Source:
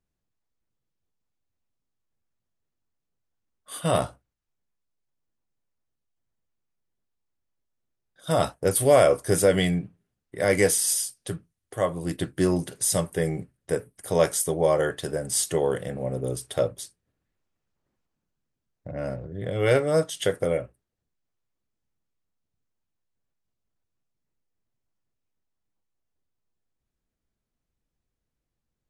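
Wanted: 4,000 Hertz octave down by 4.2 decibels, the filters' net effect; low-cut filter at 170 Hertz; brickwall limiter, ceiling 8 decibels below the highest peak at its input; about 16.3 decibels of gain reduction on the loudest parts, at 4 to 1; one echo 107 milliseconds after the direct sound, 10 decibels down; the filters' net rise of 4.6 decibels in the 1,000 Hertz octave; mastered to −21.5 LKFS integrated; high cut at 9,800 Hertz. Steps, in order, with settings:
high-pass filter 170 Hz
low-pass filter 9,800 Hz
parametric band 1,000 Hz +7 dB
parametric band 4,000 Hz −6 dB
downward compressor 4 to 1, threshold −31 dBFS
brickwall limiter −23 dBFS
single-tap delay 107 ms −10 dB
level +14 dB

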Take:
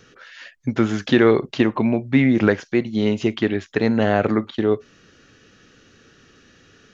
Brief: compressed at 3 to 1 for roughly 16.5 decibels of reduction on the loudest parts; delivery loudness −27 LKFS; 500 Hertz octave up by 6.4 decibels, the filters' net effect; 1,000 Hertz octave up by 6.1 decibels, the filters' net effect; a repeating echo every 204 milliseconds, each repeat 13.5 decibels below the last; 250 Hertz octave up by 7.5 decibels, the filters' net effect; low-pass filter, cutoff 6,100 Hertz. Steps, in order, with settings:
low-pass filter 6,100 Hz
parametric band 250 Hz +7.5 dB
parametric band 500 Hz +4 dB
parametric band 1,000 Hz +6.5 dB
downward compressor 3 to 1, threshold −27 dBFS
repeating echo 204 ms, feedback 21%, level −13.5 dB

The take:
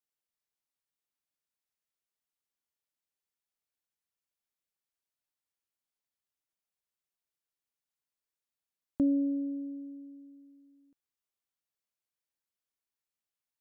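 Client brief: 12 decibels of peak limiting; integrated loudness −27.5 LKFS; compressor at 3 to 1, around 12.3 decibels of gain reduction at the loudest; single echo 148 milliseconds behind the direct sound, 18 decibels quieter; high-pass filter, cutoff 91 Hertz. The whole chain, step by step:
high-pass filter 91 Hz
downward compressor 3 to 1, threshold −41 dBFS
brickwall limiter −38 dBFS
single-tap delay 148 ms −18 dB
level +18 dB

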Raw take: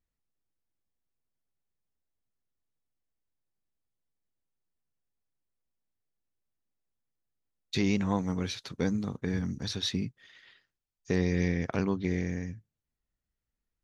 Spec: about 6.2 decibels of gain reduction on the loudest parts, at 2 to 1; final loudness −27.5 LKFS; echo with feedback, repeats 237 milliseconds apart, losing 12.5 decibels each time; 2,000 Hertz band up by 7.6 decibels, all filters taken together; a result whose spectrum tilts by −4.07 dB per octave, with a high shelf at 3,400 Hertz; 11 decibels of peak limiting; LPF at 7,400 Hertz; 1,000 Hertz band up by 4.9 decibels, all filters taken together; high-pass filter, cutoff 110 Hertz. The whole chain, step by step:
high-pass filter 110 Hz
low-pass filter 7,400 Hz
parametric band 1,000 Hz +4 dB
parametric band 2,000 Hz +6.5 dB
high-shelf EQ 3,400 Hz +4.5 dB
downward compressor 2 to 1, threshold −33 dBFS
brickwall limiter −26.5 dBFS
repeating echo 237 ms, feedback 24%, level −12.5 dB
level +11 dB

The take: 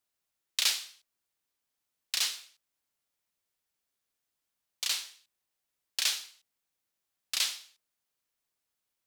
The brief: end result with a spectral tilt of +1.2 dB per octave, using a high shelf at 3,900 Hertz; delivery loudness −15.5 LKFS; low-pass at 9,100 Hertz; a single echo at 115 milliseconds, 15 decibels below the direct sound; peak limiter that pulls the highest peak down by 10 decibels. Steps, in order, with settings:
low-pass filter 9,100 Hz
high-shelf EQ 3,900 Hz −6 dB
brickwall limiter −24 dBFS
single-tap delay 115 ms −15 dB
level +23 dB

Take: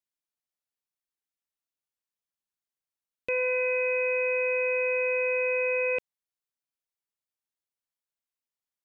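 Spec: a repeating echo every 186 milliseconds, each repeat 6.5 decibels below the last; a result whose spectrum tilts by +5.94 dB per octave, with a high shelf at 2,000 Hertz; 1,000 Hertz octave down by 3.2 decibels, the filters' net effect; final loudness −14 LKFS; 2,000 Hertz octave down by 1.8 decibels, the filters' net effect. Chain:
parametric band 1,000 Hz −3 dB
high-shelf EQ 2,000 Hz +7.5 dB
parametric band 2,000 Hz −8.5 dB
repeating echo 186 ms, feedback 47%, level −6.5 dB
level +12 dB

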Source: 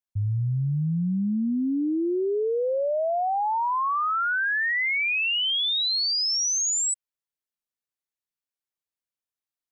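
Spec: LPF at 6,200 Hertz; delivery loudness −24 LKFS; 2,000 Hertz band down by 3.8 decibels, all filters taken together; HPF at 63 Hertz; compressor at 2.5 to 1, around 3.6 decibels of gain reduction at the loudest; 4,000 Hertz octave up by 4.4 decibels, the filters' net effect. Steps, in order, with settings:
high-pass filter 63 Hz
low-pass filter 6,200 Hz
parametric band 2,000 Hz −7.5 dB
parametric band 4,000 Hz +8.5 dB
downward compressor 2.5 to 1, threshold −23 dBFS
level +0.5 dB

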